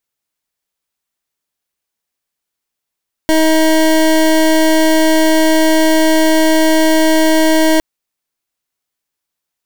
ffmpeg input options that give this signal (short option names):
-f lavfi -i "aevalsrc='0.316*(2*lt(mod(317*t,1),0.25)-1)':d=4.51:s=44100"